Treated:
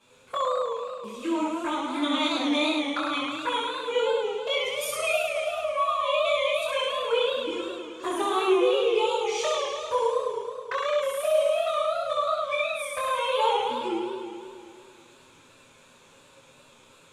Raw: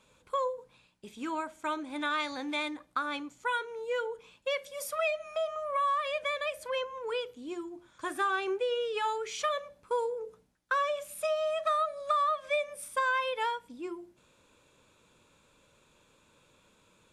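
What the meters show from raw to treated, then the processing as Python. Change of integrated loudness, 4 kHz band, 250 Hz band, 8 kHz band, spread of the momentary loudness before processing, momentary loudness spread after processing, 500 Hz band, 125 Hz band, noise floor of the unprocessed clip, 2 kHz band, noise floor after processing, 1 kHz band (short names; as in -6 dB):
+6.0 dB, +10.0 dB, +11.0 dB, +7.0 dB, 11 LU, 9 LU, +8.0 dB, n/a, -66 dBFS, +3.0 dB, -56 dBFS, +4.0 dB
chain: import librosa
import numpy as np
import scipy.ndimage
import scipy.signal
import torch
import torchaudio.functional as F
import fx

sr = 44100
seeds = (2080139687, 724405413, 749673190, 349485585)

y = fx.low_shelf(x, sr, hz=110.0, db=-8.5)
y = fx.rider(y, sr, range_db=4, speed_s=2.0)
y = fx.chorus_voices(y, sr, voices=2, hz=0.62, base_ms=11, depth_ms=2.4, mix_pct=50)
y = fx.wow_flutter(y, sr, seeds[0], rate_hz=2.1, depth_cents=22.0)
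y = fx.env_flanger(y, sr, rest_ms=8.7, full_db=-34.0)
y = fx.room_early_taps(y, sr, ms=(24, 66), db=(-3.0, -3.0))
y = fx.echo_warbled(y, sr, ms=106, feedback_pct=73, rate_hz=2.8, cents=145, wet_db=-4.5)
y = F.gain(torch.from_numpy(y), 7.5).numpy()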